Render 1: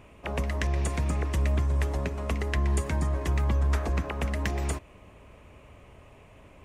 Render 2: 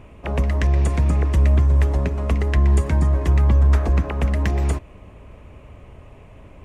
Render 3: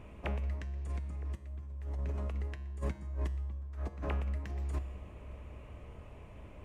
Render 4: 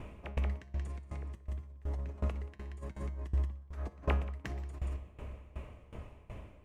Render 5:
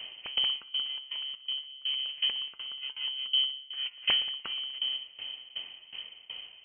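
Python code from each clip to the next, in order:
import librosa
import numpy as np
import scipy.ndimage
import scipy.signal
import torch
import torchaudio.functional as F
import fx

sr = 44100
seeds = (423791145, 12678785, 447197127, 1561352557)

y1 = fx.tilt_eq(x, sr, slope=-1.5)
y1 = F.gain(torch.from_numpy(y1), 4.5).numpy()
y2 = fx.over_compress(y1, sr, threshold_db=-26.0, ratio=-1.0)
y2 = fx.comb_fb(y2, sr, f0_hz=67.0, decay_s=0.9, harmonics='odd', damping=0.0, mix_pct=70)
y2 = F.gain(torch.from_numpy(y2), -6.0).numpy()
y3 = y2 + 10.0 ** (-9.5 / 20.0) * np.pad(y2, (int(180 * sr / 1000.0), 0))[:len(y2)]
y3 = fx.tremolo_decay(y3, sr, direction='decaying', hz=2.7, depth_db=20)
y3 = F.gain(torch.from_numpy(y3), 7.0).numpy()
y4 = fx.freq_invert(y3, sr, carrier_hz=3100)
y4 = F.gain(torch.from_numpy(y4), 2.0).numpy()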